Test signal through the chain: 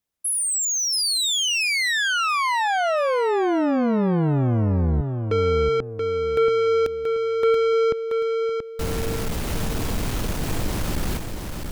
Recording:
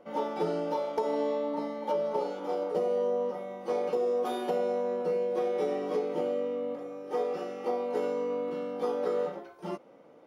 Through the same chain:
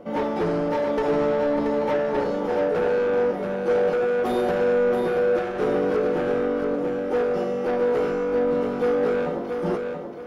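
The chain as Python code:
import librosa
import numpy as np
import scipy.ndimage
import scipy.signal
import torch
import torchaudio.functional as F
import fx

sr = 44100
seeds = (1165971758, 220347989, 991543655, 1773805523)

y = fx.low_shelf(x, sr, hz=390.0, db=11.0)
y = 10.0 ** (-27.0 / 20.0) * np.tanh(y / 10.0 ** (-27.0 / 20.0))
y = fx.echo_feedback(y, sr, ms=680, feedback_pct=32, wet_db=-5.5)
y = y * librosa.db_to_amplitude(7.0)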